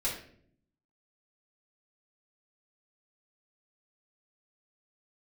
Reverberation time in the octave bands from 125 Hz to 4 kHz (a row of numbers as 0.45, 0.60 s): 1.1, 1.0, 0.70, 0.45, 0.50, 0.40 s